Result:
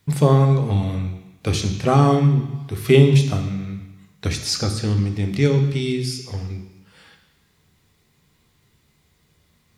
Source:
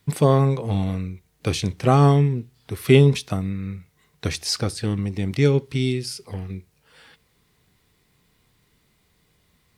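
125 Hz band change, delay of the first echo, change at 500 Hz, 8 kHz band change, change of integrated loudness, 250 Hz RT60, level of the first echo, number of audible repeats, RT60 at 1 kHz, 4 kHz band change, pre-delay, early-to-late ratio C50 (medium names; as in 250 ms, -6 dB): +3.0 dB, no echo, +1.0 dB, +2.0 dB, +2.0 dB, 0.95 s, no echo, no echo, 1.2 s, +2.0 dB, 3 ms, 8.5 dB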